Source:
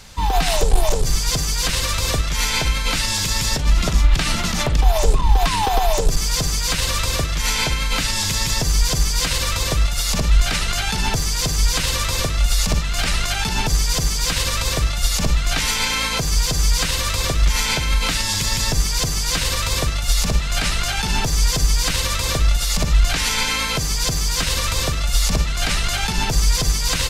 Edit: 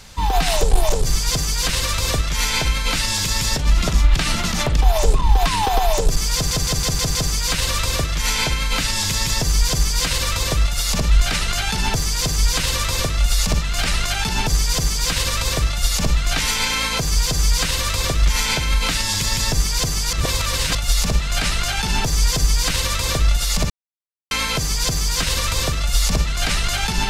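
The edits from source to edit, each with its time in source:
6.35 s: stutter 0.16 s, 6 plays
19.33–19.95 s: reverse
22.90–23.51 s: mute

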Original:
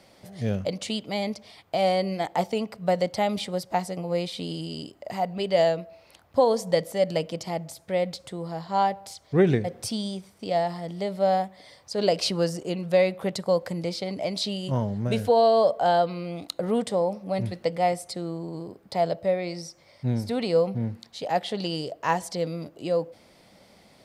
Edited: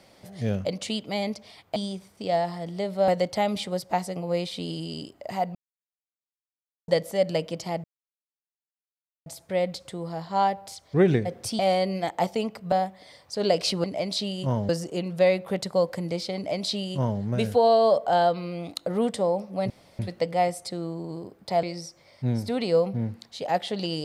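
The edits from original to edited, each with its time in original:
1.76–2.89 s: swap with 9.98–11.30 s
5.36–6.69 s: mute
7.65 s: insert silence 1.42 s
14.09–14.94 s: copy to 12.42 s
17.43 s: insert room tone 0.29 s
19.07–19.44 s: delete

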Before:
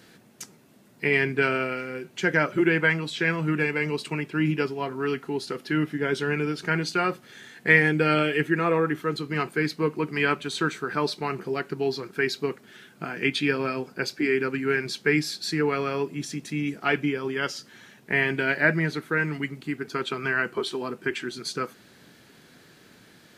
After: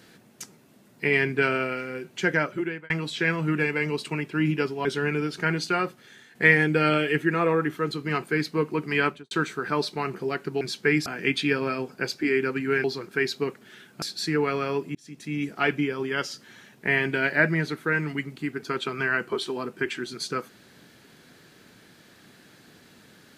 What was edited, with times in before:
2.27–2.90 s: fade out
4.85–6.10 s: delete
6.94–7.60 s: fade out, to -7.5 dB
10.30–10.56 s: studio fade out
11.86–13.04 s: swap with 14.82–15.27 s
16.20–16.68 s: fade in

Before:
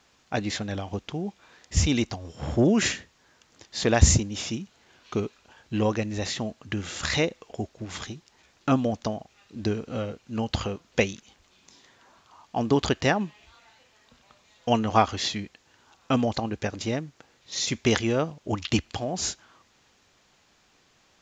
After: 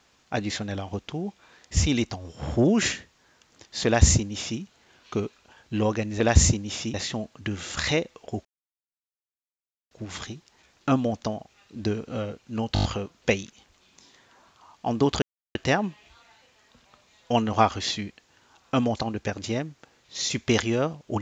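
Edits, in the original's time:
3.86–4.60 s: copy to 6.20 s
7.71 s: insert silence 1.46 s
10.54 s: stutter 0.02 s, 6 plays
12.92 s: insert silence 0.33 s

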